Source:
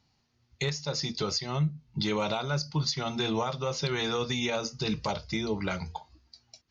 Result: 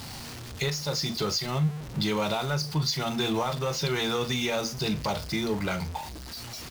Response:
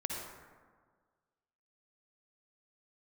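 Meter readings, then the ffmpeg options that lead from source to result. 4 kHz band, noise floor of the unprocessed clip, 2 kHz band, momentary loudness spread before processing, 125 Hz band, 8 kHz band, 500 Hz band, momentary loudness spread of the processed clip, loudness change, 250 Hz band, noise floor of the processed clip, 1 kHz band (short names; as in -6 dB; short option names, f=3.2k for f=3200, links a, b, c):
+2.5 dB, -72 dBFS, +2.5 dB, 4 LU, +2.5 dB, n/a, +2.0 dB, 11 LU, +2.0 dB, +2.5 dB, -40 dBFS, +2.5 dB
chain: -filter_complex "[0:a]aeval=exprs='val(0)+0.5*0.02*sgn(val(0))':c=same,asplit=2[a][b];[b]adelay=39,volume=-13.5dB[c];[a][c]amix=inputs=2:normalize=0"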